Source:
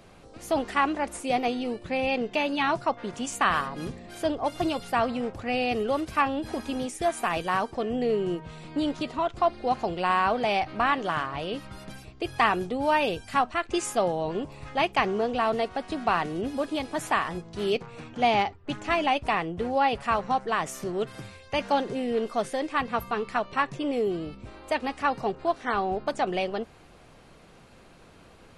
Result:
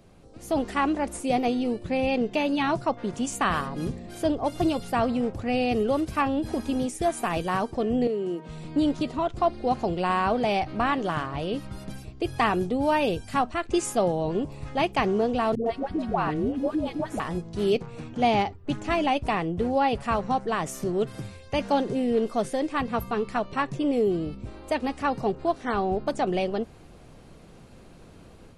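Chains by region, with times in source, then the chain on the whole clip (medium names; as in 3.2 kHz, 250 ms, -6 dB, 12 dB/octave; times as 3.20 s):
8.07–8.49 s: high-pass 200 Hz 24 dB/octave + compression 2:1, threshold -32 dBFS
15.55–17.20 s: treble shelf 3.4 kHz -12 dB + phase dispersion highs, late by 111 ms, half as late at 550 Hz
whole clip: tilt shelf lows +6.5 dB, about 700 Hz; level rider gain up to 6 dB; treble shelf 3.4 kHz +9 dB; trim -6 dB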